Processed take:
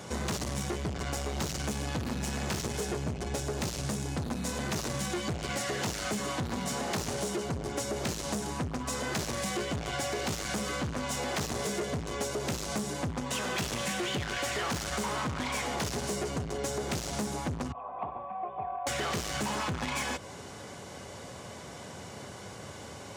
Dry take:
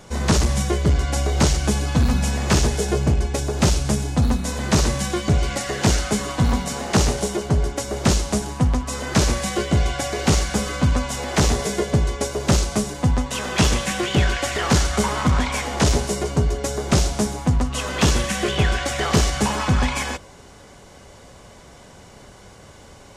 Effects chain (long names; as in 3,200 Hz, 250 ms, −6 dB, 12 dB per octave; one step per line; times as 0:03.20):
0:17.72–0:18.87: formant resonators in series a
soft clipping −23 dBFS, distortion −7 dB
high-pass filter 83 Hz 24 dB per octave
downward compressor 3 to 1, threshold −33 dBFS, peak gain reduction 8.5 dB
level +1.5 dB